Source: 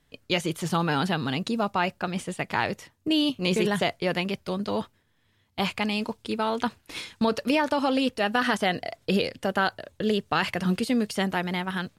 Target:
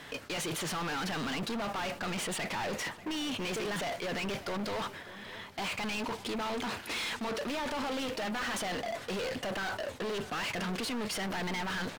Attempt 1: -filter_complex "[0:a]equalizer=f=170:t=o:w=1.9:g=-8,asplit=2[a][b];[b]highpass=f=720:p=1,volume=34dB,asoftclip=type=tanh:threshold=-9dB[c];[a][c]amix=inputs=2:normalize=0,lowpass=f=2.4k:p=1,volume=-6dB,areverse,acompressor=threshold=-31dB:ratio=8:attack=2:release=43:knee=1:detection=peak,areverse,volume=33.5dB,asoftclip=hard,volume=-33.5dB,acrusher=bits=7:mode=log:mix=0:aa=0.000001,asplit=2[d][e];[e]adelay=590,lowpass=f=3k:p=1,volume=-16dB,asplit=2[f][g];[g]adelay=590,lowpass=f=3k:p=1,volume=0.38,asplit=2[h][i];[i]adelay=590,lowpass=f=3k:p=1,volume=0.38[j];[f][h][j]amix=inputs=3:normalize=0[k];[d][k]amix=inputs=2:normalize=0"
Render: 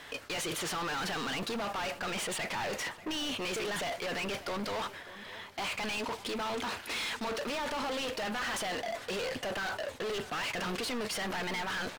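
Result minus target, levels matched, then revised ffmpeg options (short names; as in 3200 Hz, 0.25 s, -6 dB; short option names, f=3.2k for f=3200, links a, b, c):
125 Hz band -4.0 dB
-filter_complex "[0:a]asplit=2[a][b];[b]highpass=f=720:p=1,volume=34dB,asoftclip=type=tanh:threshold=-9dB[c];[a][c]amix=inputs=2:normalize=0,lowpass=f=2.4k:p=1,volume=-6dB,areverse,acompressor=threshold=-31dB:ratio=8:attack=2:release=43:knee=1:detection=peak,areverse,volume=33.5dB,asoftclip=hard,volume=-33.5dB,acrusher=bits=7:mode=log:mix=0:aa=0.000001,asplit=2[d][e];[e]adelay=590,lowpass=f=3k:p=1,volume=-16dB,asplit=2[f][g];[g]adelay=590,lowpass=f=3k:p=1,volume=0.38,asplit=2[h][i];[i]adelay=590,lowpass=f=3k:p=1,volume=0.38[j];[f][h][j]amix=inputs=3:normalize=0[k];[d][k]amix=inputs=2:normalize=0"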